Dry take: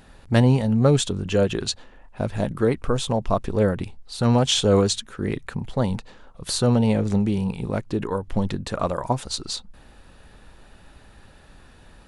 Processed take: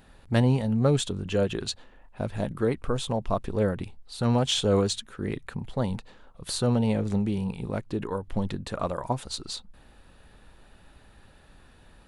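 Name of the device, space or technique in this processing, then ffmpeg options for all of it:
exciter from parts: -filter_complex "[0:a]asplit=2[a][b];[b]highpass=f=4k:w=0.5412,highpass=f=4k:w=1.3066,asoftclip=type=tanh:threshold=-17.5dB,highpass=4.3k,volume=-10dB[c];[a][c]amix=inputs=2:normalize=0,volume=-5dB"

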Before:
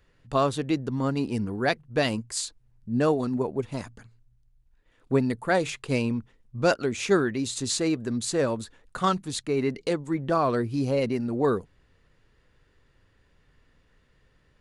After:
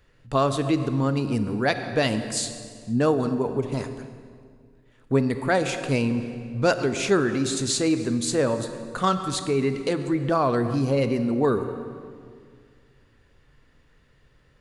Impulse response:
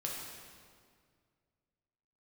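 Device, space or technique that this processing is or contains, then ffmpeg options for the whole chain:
ducked reverb: -filter_complex "[0:a]asplit=3[a][b][c];[1:a]atrim=start_sample=2205[d];[b][d]afir=irnorm=-1:irlink=0[e];[c]apad=whole_len=643922[f];[e][f]sidechaincompress=threshold=-27dB:ratio=4:attack=16:release=127,volume=-4.5dB[g];[a][g]amix=inputs=2:normalize=0"

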